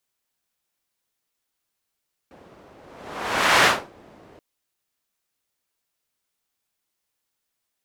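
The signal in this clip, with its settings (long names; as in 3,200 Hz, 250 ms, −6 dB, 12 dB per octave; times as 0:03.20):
pass-by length 2.08 s, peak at 0:01.34, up 0.93 s, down 0.27 s, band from 450 Hz, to 1,600 Hz, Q 0.81, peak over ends 33 dB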